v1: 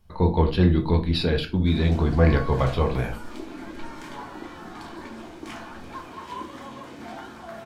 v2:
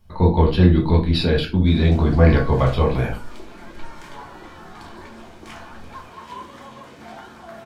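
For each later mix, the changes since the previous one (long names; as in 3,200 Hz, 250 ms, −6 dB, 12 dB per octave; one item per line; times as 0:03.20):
speech: send +6.5 dB
second sound: add phaser with its sweep stopped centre 930 Hz, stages 6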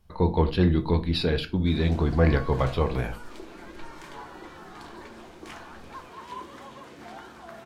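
speech: send −11.5 dB
first sound: send −9.5 dB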